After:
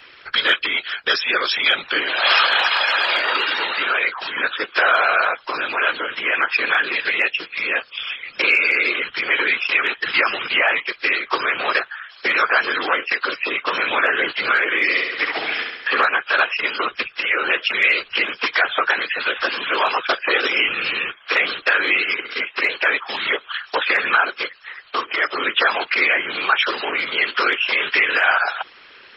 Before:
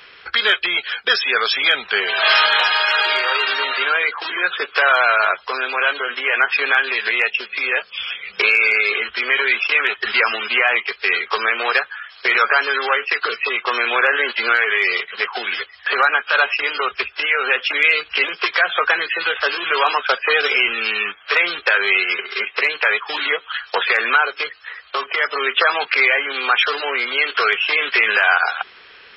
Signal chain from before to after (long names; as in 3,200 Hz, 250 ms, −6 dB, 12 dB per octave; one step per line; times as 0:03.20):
random phases in short frames
0:14.82–0:16.05: flutter between parallel walls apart 11.7 metres, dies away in 0.88 s
level −1.5 dB